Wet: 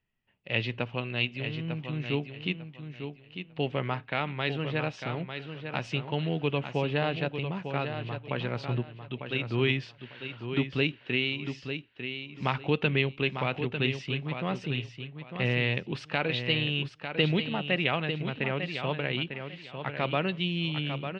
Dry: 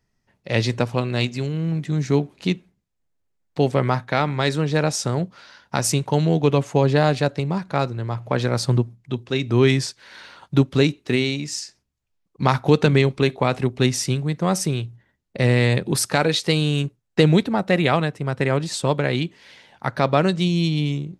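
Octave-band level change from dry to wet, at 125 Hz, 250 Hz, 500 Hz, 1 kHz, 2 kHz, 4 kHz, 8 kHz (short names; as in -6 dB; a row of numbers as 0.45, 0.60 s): -11.0 dB, -11.0 dB, -10.5 dB, -10.0 dB, -3.5 dB, -5.0 dB, under -30 dB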